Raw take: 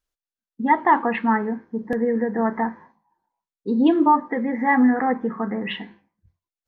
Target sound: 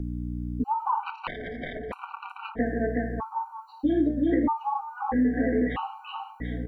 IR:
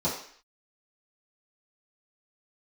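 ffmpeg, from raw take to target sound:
-filter_complex "[0:a]aecho=1:1:368|736|1104|1472:0.562|0.191|0.065|0.0221[a];[1:a]atrim=start_sample=2205,asetrate=74970,aresample=44100[b];[a][b]afir=irnorm=-1:irlink=0,acompressor=threshold=-7dB:ratio=8,aeval=exprs='val(0)+0.0631*(sin(2*PI*60*n/s)+sin(2*PI*2*60*n/s)/2+sin(2*PI*3*60*n/s)/3+sin(2*PI*4*60*n/s)/4+sin(2*PI*5*60*n/s)/5)':c=same,acrossover=split=200|2000[c][d][e];[c]acompressor=threshold=-34dB:ratio=4[f];[d]acompressor=threshold=-24dB:ratio=4[g];[e]acompressor=threshold=-42dB:ratio=4[h];[f][g][h]amix=inputs=3:normalize=0,acrusher=bits=11:mix=0:aa=0.000001,asettb=1/sr,asplit=3[i][j][k];[i]atrim=end=1.034[l];[j]atrim=start=1.03:end=2.59,asetpts=PTS-STARTPTS,afade=t=in:d=0.004:c=qsin,afade=t=out:st=1.556:d=0.004:c=qsin,aeval=exprs='0.266*(cos(1*acos(clip(val(0)/0.266,-1,1)))-cos(1*PI/2))+0.133*(cos(3*acos(clip(val(0)/0.266,-1,1)))-cos(3*PI/2))':c=same[m];[k]atrim=start=2.586[n];[l][m]acrossfade=d=0.004:c1=hsin:c2=qsin[o];[o][n]acrossfade=d=0.004:c1=qsin:c2=hsin,afftfilt=real='re*gt(sin(2*PI*0.78*pts/sr)*(1-2*mod(floor(b*sr/1024/770),2)),0)':imag='im*gt(sin(2*PI*0.78*pts/sr)*(1-2*mod(floor(b*sr/1024/770),2)),0)':win_size=1024:overlap=0.75"

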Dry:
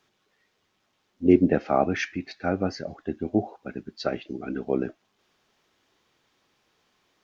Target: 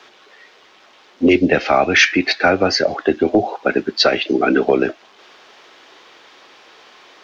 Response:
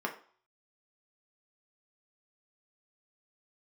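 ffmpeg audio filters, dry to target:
-filter_complex "[0:a]acrossover=split=320 5700:gain=0.1 1 0.141[a][b][c];[a][b][c]amix=inputs=3:normalize=0,acrossover=split=130|2300[d][e][f];[e]acompressor=threshold=-36dB:ratio=6[g];[d][g][f]amix=inputs=3:normalize=0,apsyclip=29.5dB,volume=-4.5dB"

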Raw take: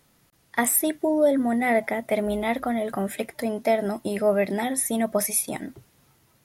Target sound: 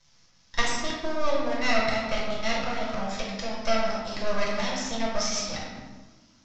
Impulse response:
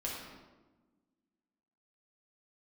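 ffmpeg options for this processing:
-filter_complex "[0:a]equalizer=f=330:t=o:w=1.5:g=-13.5,aresample=16000,aeval=exprs='max(val(0),0)':c=same,aresample=44100,lowpass=f=5.6k:t=q:w=4.3[a];[1:a]atrim=start_sample=2205[b];[a][b]afir=irnorm=-1:irlink=0,volume=3dB"

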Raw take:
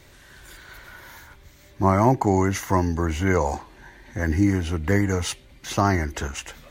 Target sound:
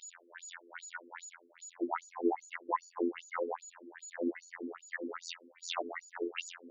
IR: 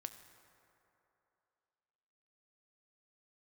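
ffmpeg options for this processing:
-filter_complex "[0:a]aemphasis=mode=reproduction:type=50fm[a];[1:a]atrim=start_sample=2205,afade=t=out:st=0.2:d=0.01,atrim=end_sample=9261[b];[a][b]afir=irnorm=-1:irlink=0,aeval=exprs='val(0)+0.00355*sin(2*PI*6900*n/s)':c=same,afftfilt=real='hypot(re,im)*cos(PI*b)':imag='0':win_size=2048:overlap=0.75,asplit=2[c][d];[d]highpass=f=720:p=1,volume=14dB,asoftclip=type=tanh:threshold=-5dB[e];[c][e]amix=inputs=2:normalize=0,lowpass=f=2.4k:p=1,volume=-6dB,asubboost=boost=11.5:cutoff=200,acompressor=threshold=-29dB:ratio=2,afftfilt=real='re*between(b*sr/1024,330*pow(6000/330,0.5+0.5*sin(2*PI*2.5*pts/sr))/1.41,330*pow(6000/330,0.5+0.5*sin(2*PI*2.5*pts/sr))*1.41)':imag='im*between(b*sr/1024,330*pow(6000/330,0.5+0.5*sin(2*PI*2.5*pts/sr))/1.41,330*pow(6000/330,0.5+0.5*sin(2*PI*2.5*pts/sr))*1.41)':win_size=1024:overlap=0.75,volume=5.5dB"

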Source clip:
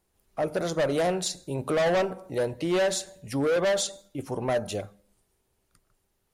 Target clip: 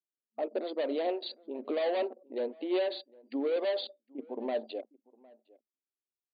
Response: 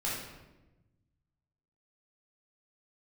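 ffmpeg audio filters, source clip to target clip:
-filter_complex "[0:a]anlmdn=6.31,equalizer=f=1.4k:w=1.6:g=-12.5,asplit=2[a][b];[b]adelay=758,volume=-24dB,highshelf=f=4k:g=-17.1[c];[a][c]amix=inputs=2:normalize=0,aphaser=in_gain=1:out_gain=1:delay=4.4:decay=0.23:speed=1.8:type=sinusoidal,afftfilt=real='re*between(b*sr/4096,220,4700)':imag='im*between(b*sr/4096,220,4700)':win_size=4096:overlap=0.75,volume=-5dB"

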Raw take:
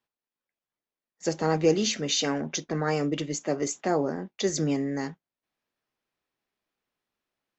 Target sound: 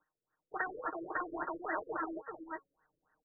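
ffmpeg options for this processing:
-filter_complex "[0:a]acompressor=threshold=-34dB:ratio=4,alimiter=level_in=7dB:limit=-24dB:level=0:latency=1:release=173,volume=-7dB,equalizer=f=260:t=o:w=0.77:g=-6,afftfilt=real='re*lt(hypot(re,im),0.0398)':imag='im*lt(hypot(re,im),0.0398)':win_size=1024:overlap=0.75,aecho=1:1:904:0.447,acrossover=split=2100|4600[a][b][c];[a]acompressor=threshold=-44dB:ratio=4[d];[b]acompressor=threshold=-58dB:ratio=4[e];[c]acompressor=threshold=-55dB:ratio=4[f];[d][e][f]amix=inputs=3:normalize=0,asetrate=103194,aresample=44100,highshelf=f=6.6k:g=-4,bandreject=f=276.6:t=h:w=4,bandreject=f=553.2:t=h:w=4,bandreject=f=829.8:t=h:w=4,bandreject=f=1.1064k:t=h:w=4,bandreject=f=1.383k:t=h:w=4,bandreject=f=1.6596k:t=h:w=4,bandreject=f=1.9362k:t=h:w=4,bandreject=f=2.2128k:t=h:w=4,bandreject=f=2.4894k:t=h:w=4,bandreject=f=2.766k:t=h:w=4,bandreject=f=3.0426k:t=h:w=4,bandreject=f=3.3192k:t=h:w=4,bandreject=f=3.5958k:t=h:w=4,bandreject=f=3.8724k:t=h:w=4,crystalizer=i=9:c=0,aecho=1:1:6.5:0.57,afftfilt=real='re*lt(b*sr/1024,550*pow(2000/550,0.5+0.5*sin(2*PI*3.6*pts/sr)))':imag='im*lt(b*sr/1024,550*pow(2000/550,0.5+0.5*sin(2*PI*3.6*pts/sr)))':win_size=1024:overlap=0.75,volume=10dB"

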